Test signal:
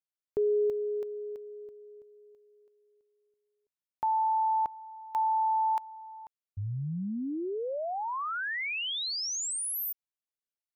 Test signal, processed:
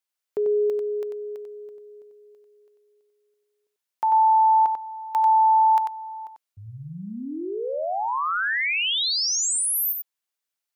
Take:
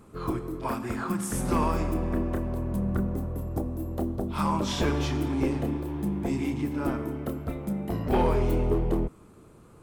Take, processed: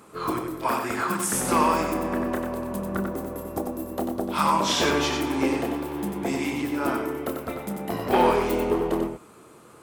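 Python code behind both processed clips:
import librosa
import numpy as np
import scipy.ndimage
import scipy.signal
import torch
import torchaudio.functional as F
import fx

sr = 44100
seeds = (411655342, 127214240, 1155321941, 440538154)

p1 = fx.highpass(x, sr, hz=640.0, slope=6)
p2 = p1 + fx.echo_single(p1, sr, ms=93, db=-5.5, dry=0)
y = p2 * 10.0 ** (8.5 / 20.0)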